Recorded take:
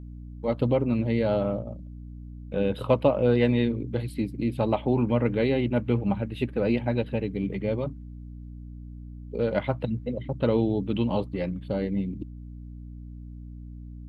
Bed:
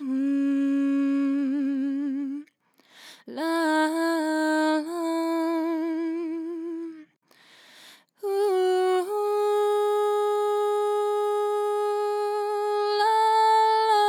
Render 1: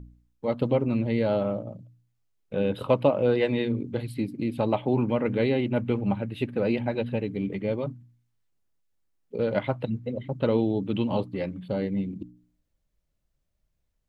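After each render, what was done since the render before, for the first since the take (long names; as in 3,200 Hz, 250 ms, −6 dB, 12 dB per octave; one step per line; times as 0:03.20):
hum removal 60 Hz, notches 5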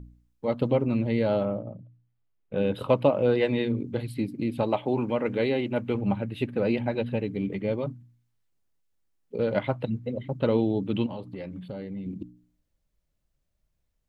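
0:01.45–0:02.56: high-frequency loss of the air 310 metres
0:04.63–0:05.95: bass and treble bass −6 dB, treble +2 dB
0:11.06–0:12.06: downward compressor 5 to 1, threshold −33 dBFS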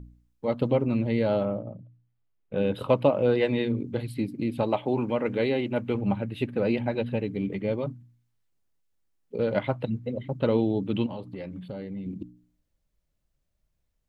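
no processing that can be heard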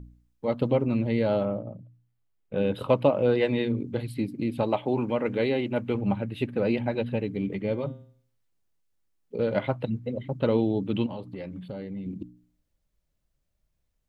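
0:07.61–0:09.66: hum removal 132.1 Hz, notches 31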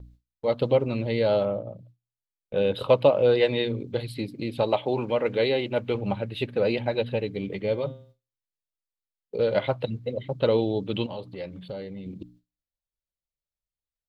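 noise gate with hold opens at −41 dBFS
octave-band graphic EQ 250/500/4,000 Hz −6/+5/+9 dB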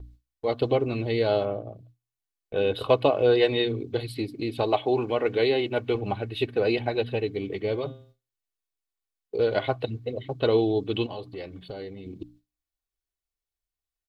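comb filter 2.7 ms, depth 57%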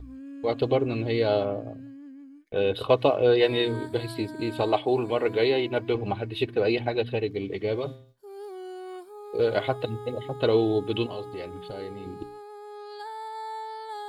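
mix in bed −16.5 dB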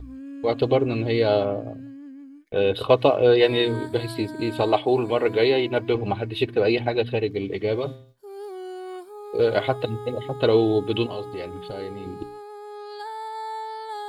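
level +3.5 dB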